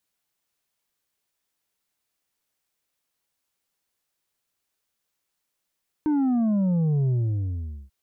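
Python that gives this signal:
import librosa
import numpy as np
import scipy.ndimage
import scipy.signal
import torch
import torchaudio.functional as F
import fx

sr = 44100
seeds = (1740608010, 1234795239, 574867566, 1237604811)

y = fx.sub_drop(sr, level_db=-20, start_hz=310.0, length_s=1.84, drive_db=5.0, fade_s=0.81, end_hz=65.0)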